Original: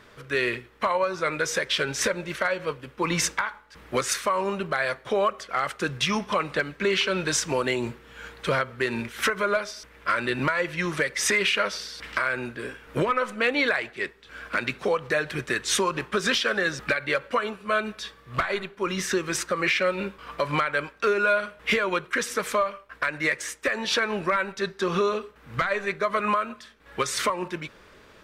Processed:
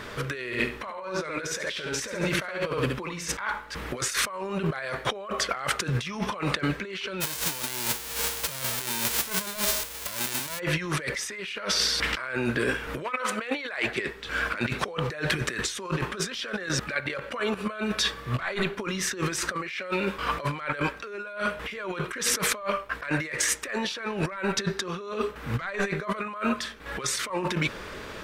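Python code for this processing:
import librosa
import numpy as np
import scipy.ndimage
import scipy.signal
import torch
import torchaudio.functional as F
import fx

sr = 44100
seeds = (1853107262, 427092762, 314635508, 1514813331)

y = fx.echo_feedback(x, sr, ms=69, feedback_pct=24, wet_db=-5.0, at=(0.5, 3.3), fade=0.02)
y = fx.envelope_flatten(y, sr, power=0.1, at=(7.2, 10.58), fade=0.02)
y = fx.highpass(y, sr, hz=fx.line((13.03, 1100.0), (13.84, 350.0)), slope=6, at=(13.03, 13.84), fade=0.02)
y = fx.level_steps(y, sr, step_db=13, at=(16.66, 17.59))
y = fx.low_shelf(y, sr, hz=300.0, db=-6.5, at=(19.71, 20.19))
y = fx.over_compress(y, sr, threshold_db=-36.0, ratio=-1.0)
y = y * librosa.db_to_amplitude(5.0)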